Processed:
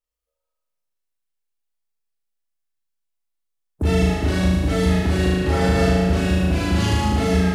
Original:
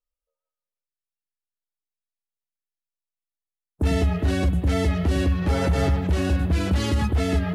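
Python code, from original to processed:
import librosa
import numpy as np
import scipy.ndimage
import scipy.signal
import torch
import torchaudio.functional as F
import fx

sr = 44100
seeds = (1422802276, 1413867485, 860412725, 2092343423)

y = fx.room_flutter(x, sr, wall_m=6.5, rt60_s=1.5)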